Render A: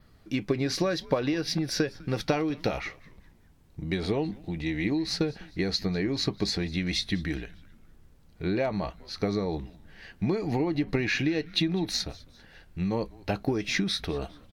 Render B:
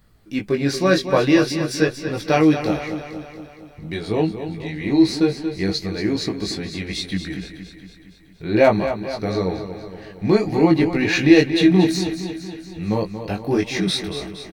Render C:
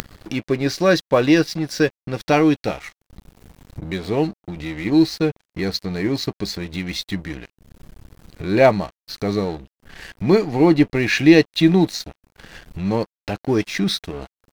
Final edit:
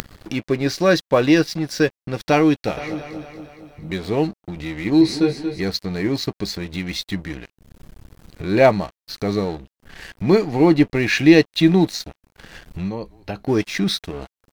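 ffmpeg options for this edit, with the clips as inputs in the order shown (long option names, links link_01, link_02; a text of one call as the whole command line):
ffmpeg -i take0.wav -i take1.wav -i take2.wav -filter_complex "[1:a]asplit=2[link_01][link_02];[2:a]asplit=4[link_03][link_04][link_05][link_06];[link_03]atrim=end=2.772[link_07];[link_01]atrim=start=2.768:end=3.902[link_08];[link_04]atrim=start=3.898:end=5.012[link_09];[link_02]atrim=start=5.008:end=5.602[link_10];[link_05]atrim=start=5.598:end=12.92[link_11];[0:a]atrim=start=12.82:end=13.5[link_12];[link_06]atrim=start=13.4[link_13];[link_07][link_08]acrossfade=duration=0.004:curve1=hsin:curve2=hsin[link_14];[link_14][link_09]acrossfade=duration=0.004:curve1=hsin:curve2=hsin[link_15];[link_15][link_10]acrossfade=duration=0.004:curve1=hsin:curve2=hsin[link_16];[link_16][link_11]acrossfade=duration=0.004:curve1=hsin:curve2=hsin[link_17];[link_17][link_12]acrossfade=duration=0.1:curve1=tri:curve2=tri[link_18];[link_18][link_13]acrossfade=duration=0.1:curve1=tri:curve2=tri" out.wav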